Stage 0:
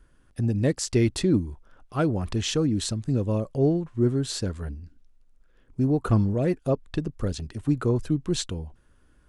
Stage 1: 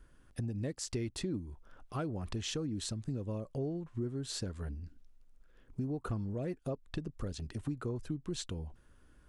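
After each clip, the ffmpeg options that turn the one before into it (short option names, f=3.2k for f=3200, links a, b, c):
-af "acompressor=threshold=-34dB:ratio=4,volume=-2dB"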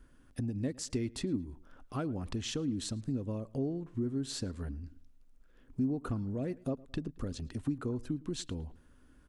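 -filter_complex "[0:a]equalizer=f=260:w=4.2:g=8.5,asplit=2[a][b];[b]adelay=110,lowpass=f=3.9k:p=1,volume=-22dB,asplit=2[c][d];[d]adelay=110,lowpass=f=3.9k:p=1,volume=0.39,asplit=2[e][f];[f]adelay=110,lowpass=f=3.9k:p=1,volume=0.39[g];[a][c][e][g]amix=inputs=4:normalize=0"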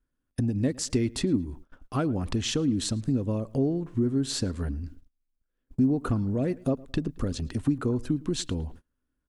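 -af "agate=range=-28dB:threshold=-51dB:ratio=16:detection=peak,volume=8.5dB"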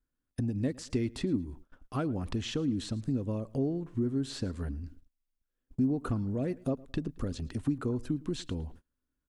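-filter_complex "[0:a]acrossover=split=3900[a][b];[b]acompressor=threshold=-40dB:ratio=4:attack=1:release=60[c];[a][c]amix=inputs=2:normalize=0,volume=-5dB"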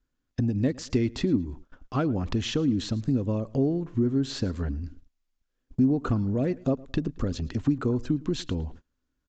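-af "aresample=16000,aresample=44100,volume=6dB"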